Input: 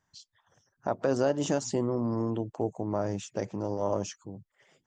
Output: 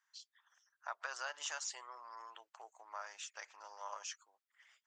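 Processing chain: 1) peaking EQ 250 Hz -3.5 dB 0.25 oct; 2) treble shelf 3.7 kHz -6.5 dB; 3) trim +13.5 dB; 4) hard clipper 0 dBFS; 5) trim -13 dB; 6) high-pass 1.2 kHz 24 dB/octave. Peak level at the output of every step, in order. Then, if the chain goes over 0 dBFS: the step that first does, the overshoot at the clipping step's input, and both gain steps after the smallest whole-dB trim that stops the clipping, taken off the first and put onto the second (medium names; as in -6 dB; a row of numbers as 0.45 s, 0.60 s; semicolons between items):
-14.5 dBFS, -15.0 dBFS, -1.5 dBFS, -1.5 dBFS, -14.5 dBFS, -26.5 dBFS; nothing clips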